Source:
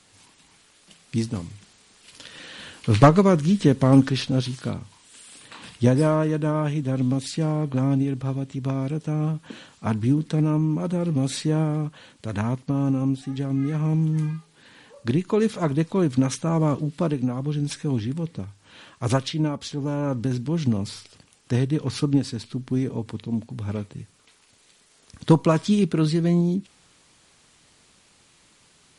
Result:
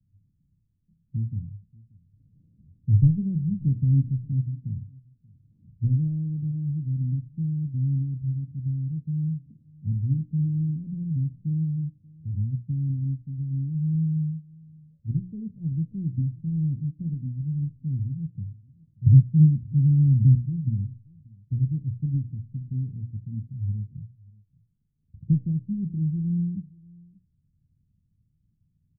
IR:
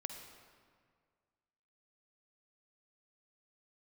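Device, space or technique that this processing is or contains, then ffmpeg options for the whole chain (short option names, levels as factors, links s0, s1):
the neighbour's flat through the wall: -filter_complex "[0:a]asettb=1/sr,asplit=3[s0][s1][s2];[s0]atrim=end=19.064[s3];[s1]atrim=start=19.06:end=20.35,asetpts=PTS-STARTPTS,afade=t=in:d=0.004:c=qsin,afade=t=out:st=1.286:d=0.004:c=qsin,equalizer=f=160:t=o:w=2.4:g=12.5[s4];[s2]atrim=start=20.346[s5];[s3][s4]acrossfade=d=0.004:c1=hsin:c2=qsin[s6];[s6][s5]acrossfade=d=0.004:c1=qsin:c2=hsin,lowpass=f=160:w=0.5412,lowpass=f=160:w=1.3066,equalizer=f=100:t=o:w=0.77:g=3.5,bandreject=f=60:t=h:w=6,bandreject=f=120:t=h:w=6,bandreject=f=180:t=h:w=6,bandreject=f=240:t=h:w=6,bandreject=f=300:t=h:w=6,bandreject=f=360:t=h:w=6,bandreject=f=420:t=h:w=6,bandreject=f=480:t=h:w=6,bandreject=f=540:t=h:w=6,asplit=2[s7][s8];[s8]adelay=583.1,volume=0.0631,highshelf=f=4000:g=-13.1[s9];[s7][s9]amix=inputs=2:normalize=0"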